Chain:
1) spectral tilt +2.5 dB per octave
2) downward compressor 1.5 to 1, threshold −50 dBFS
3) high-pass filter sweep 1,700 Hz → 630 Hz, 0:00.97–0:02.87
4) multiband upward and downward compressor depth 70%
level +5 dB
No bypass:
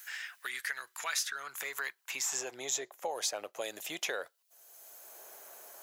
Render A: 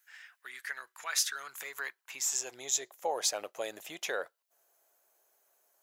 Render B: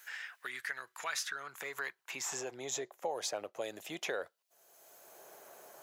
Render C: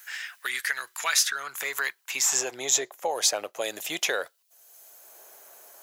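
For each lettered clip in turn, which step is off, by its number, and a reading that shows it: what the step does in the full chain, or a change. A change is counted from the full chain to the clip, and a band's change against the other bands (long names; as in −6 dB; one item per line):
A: 4, change in momentary loudness spread −3 LU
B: 1, 125 Hz band +7.5 dB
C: 2, average gain reduction 7.0 dB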